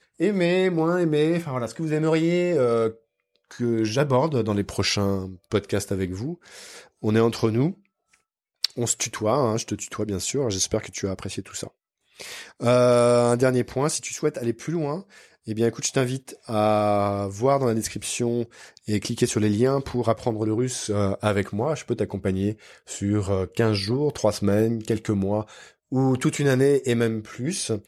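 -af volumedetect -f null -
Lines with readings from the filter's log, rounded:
mean_volume: -23.9 dB
max_volume: -6.2 dB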